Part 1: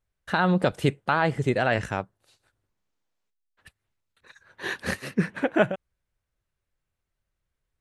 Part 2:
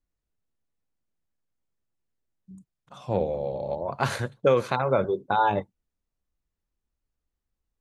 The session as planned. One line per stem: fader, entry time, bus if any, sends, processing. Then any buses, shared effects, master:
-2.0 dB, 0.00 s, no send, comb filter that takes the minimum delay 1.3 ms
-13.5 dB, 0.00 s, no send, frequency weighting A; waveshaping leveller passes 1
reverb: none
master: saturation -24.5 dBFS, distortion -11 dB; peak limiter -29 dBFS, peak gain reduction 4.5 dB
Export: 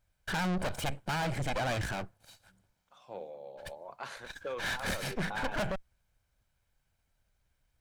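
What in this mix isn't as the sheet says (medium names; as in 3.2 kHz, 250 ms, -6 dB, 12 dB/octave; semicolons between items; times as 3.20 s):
stem 1 -2.0 dB -> +7.0 dB; stem 2: missing waveshaping leveller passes 1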